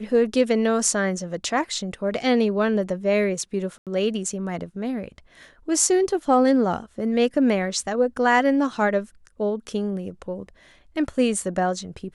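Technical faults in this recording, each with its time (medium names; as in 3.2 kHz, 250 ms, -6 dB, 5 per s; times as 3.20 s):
3.78–3.87 s: dropout 87 ms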